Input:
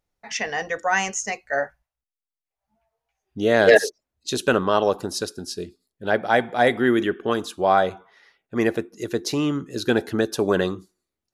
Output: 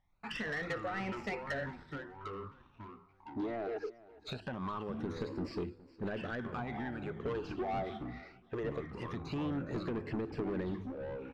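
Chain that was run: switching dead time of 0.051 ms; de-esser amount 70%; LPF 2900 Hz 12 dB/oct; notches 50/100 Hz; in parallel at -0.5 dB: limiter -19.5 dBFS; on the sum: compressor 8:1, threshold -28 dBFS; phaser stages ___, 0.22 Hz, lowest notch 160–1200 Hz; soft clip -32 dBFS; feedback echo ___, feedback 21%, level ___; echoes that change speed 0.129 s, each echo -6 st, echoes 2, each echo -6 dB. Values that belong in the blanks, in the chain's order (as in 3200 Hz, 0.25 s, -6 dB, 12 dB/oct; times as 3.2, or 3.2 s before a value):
12, 0.414 s, -20 dB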